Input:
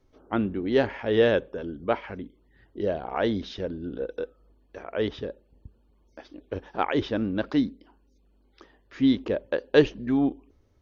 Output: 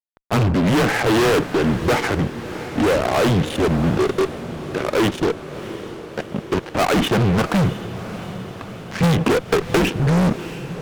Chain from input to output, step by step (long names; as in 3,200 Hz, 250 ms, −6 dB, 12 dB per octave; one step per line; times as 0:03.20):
single-sideband voice off tune −100 Hz 160–3,300 Hz
fuzz pedal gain 38 dB, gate −45 dBFS
on a send: feedback delay with all-pass diffusion 681 ms, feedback 62%, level −13 dB
0:09.03–0:09.87: on the sum: multiband upward and downward compressor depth 100%
level −1.5 dB